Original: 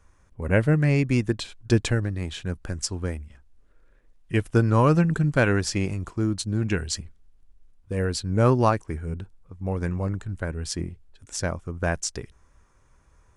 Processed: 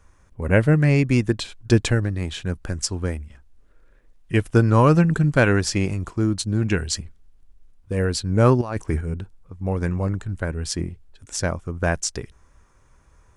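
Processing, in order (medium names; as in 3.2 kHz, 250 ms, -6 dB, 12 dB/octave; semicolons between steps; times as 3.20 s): 8.61–9.01 s: compressor with a negative ratio -29 dBFS, ratio -1; trim +3.5 dB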